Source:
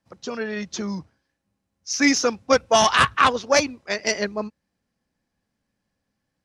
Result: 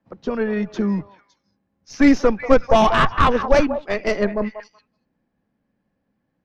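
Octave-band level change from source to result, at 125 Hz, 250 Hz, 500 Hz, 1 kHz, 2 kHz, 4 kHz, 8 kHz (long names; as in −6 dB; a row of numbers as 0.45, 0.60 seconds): +8.0, +7.0, +4.5, +1.5, −2.0, −6.5, −14.0 decibels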